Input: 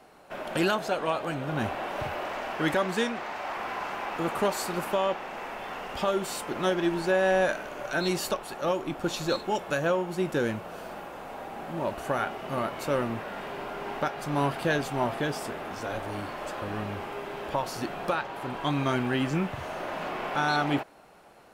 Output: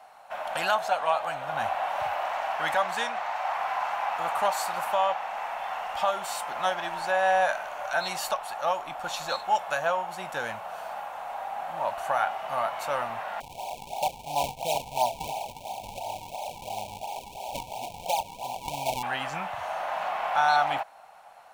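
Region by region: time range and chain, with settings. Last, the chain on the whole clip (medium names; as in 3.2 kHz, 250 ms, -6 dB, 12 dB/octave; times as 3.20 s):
13.40–19.03 s: decimation with a swept rate 40×, swing 160% 2.9 Hz + brick-wall FIR band-stop 1–2.2 kHz
whole clip: resonant low shelf 520 Hz -12.5 dB, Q 3; band-stop 4.9 kHz, Q 19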